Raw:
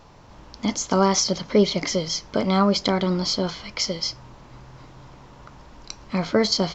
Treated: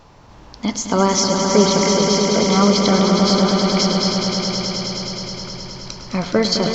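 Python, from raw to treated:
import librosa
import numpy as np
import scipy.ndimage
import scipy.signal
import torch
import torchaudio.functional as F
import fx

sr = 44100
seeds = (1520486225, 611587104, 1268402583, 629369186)

y = fx.echo_swell(x, sr, ms=105, loudest=5, wet_db=-7)
y = y * librosa.db_to_amplitude(2.5)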